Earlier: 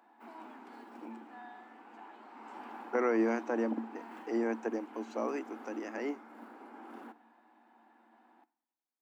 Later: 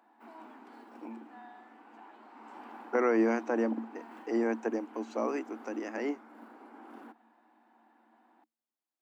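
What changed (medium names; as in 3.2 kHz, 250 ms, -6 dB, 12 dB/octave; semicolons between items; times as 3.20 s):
speech +3.0 dB; reverb: off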